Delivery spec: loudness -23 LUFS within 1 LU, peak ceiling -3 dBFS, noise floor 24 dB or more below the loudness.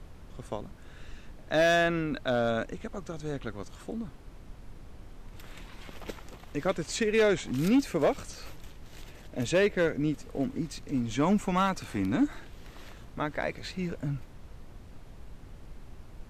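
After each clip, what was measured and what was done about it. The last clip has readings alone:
clipped samples 0.5%; clipping level -18.0 dBFS; noise floor -50 dBFS; noise floor target -54 dBFS; loudness -29.5 LUFS; peak level -18.0 dBFS; loudness target -23.0 LUFS
-> clip repair -18 dBFS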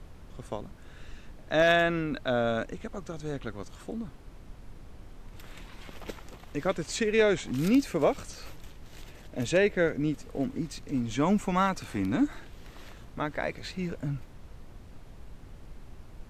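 clipped samples 0.0%; noise floor -50 dBFS; noise floor target -53 dBFS
-> noise print and reduce 6 dB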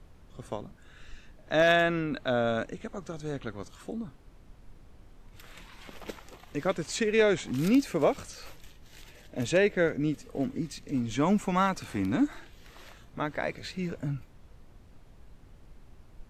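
noise floor -55 dBFS; loudness -29.0 LUFS; peak level -10.5 dBFS; loudness target -23.0 LUFS
-> trim +6 dB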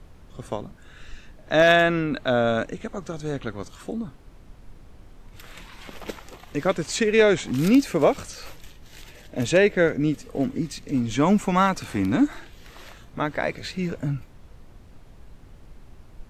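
loudness -23.0 LUFS; peak level -4.5 dBFS; noise floor -49 dBFS

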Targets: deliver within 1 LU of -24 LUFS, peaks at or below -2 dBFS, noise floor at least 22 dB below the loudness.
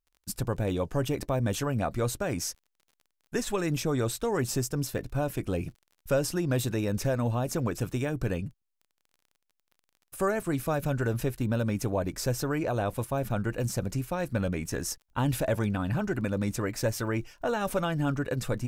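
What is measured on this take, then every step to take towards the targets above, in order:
tick rate 27 per s; loudness -30.0 LUFS; peak level -15.5 dBFS; loudness target -24.0 LUFS
-> de-click; trim +6 dB

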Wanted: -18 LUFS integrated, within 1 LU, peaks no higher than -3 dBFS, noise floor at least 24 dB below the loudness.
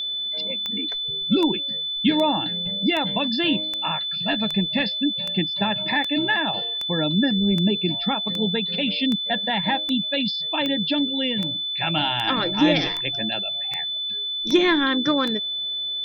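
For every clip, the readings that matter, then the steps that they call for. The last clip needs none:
clicks found 20; steady tone 3.5 kHz; tone level -25 dBFS; loudness -22.0 LUFS; peak level -6.0 dBFS; loudness target -18.0 LUFS
-> de-click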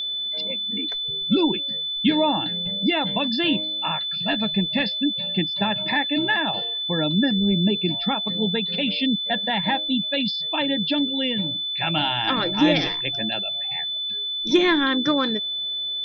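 clicks found 0; steady tone 3.5 kHz; tone level -25 dBFS
-> band-stop 3.5 kHz, Q 30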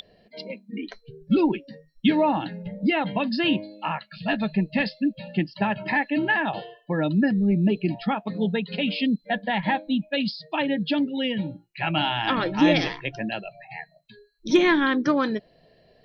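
steady tone not found; loudness -24.5 LUFS; peak level -7.0 dBFS; loudness target -18.0 LUFS
-> trim +6.5 dB; peak limiter -3 dBFS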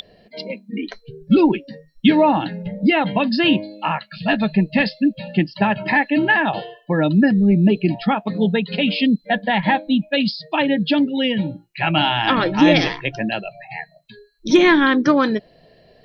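loudness -18.0 LUFS; peak level -3.0 dBFS; noise floor -55 dBFS

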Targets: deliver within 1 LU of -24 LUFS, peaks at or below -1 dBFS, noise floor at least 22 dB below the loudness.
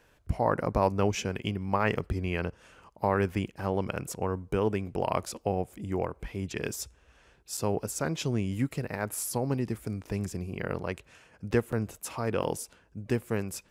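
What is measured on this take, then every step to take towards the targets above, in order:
dropouts 3; longest dropout 5.7 ms; loudness -31.5 LUFS; peak level -10.5 dBFS; loudness target -24.0 LUFS
-> interpolate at 7.57/11.72/12.43 s, 5.7 ms; trim +7.5 dB

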